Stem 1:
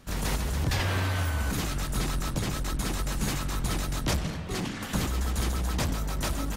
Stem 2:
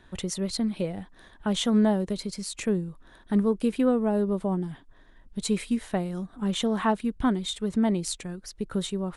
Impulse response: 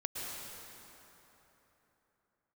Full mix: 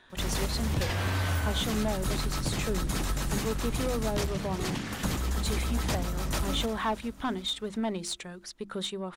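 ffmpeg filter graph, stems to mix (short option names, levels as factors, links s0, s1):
-filter_complex "[0:a]adelay=100,volume=0.944,asplit=2[s0][s1];[s1]volume=0.168[s2];[1:a]equalizer=f=3600:w=6.3:g=4,bandreject=f=50:t=h:w=6,bandreject=f=100:t=h:w=6,bandreject=f=150:t=h:w=6,bandreject=f=200:t=h:w=6,bandreject=f=250:t=h:w=6,bandreject=f=300:t=h:w=6,bandreject=f=350:t=h:w=6,asplit=2[s3][s4];[s4]highpass=f=720:p=1,volume=5.62,asoftclip=type=tanh:threshold=0.224[s5];[s3][s5]amix=inputs=2:normalize=0,lowpass=f=5200:p=1,volume=0.501,volume=0.422[s6];[s2]aecho=0:1:347|694|1041|1388|1735|2082|2429|2776:1|0.54|0.292|0.157|0.085|0.0459|0.0248|0.0134[s7];[s0][s6][s7]amix=inputs=3:normalize=0,alimiter=limit=0.112:level=0:latency=1:release=394"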